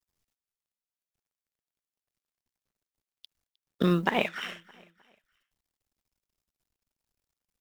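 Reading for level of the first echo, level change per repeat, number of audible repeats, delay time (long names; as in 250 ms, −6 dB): −22.5 dB, −8.5 dB, 2, 309 ms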